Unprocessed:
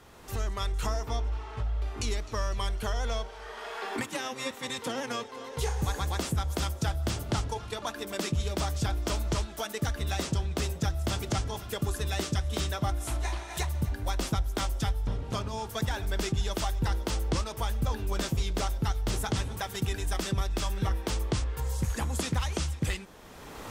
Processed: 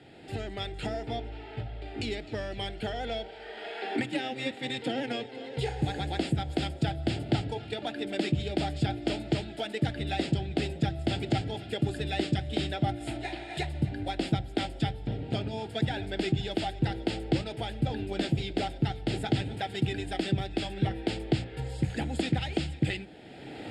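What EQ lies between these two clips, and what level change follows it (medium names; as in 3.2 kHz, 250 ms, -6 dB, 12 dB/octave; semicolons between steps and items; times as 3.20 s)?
cabinet simulation 110–7600 Hz, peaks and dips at 130 Hz +7 dB, 310 Hz +8 dB, 760 Hz +9 dB, 5.1 kHz +5 dB; hum notches 60/120/180 Hz; static phaser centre 2.6 kHz, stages 4; +2.5 dB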